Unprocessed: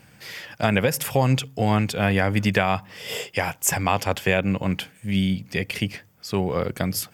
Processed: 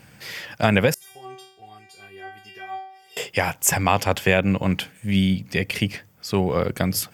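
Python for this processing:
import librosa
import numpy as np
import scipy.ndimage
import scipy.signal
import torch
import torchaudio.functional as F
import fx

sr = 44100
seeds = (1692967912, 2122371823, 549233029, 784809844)

y = fx.stiff_resonator(x, sr, f0_hz=380.0, decay_s=0.69, stiffness=0.002, at=(0.94, 3.17))
y = F.gain(torch.from_numpy(y), 2.5).numpy()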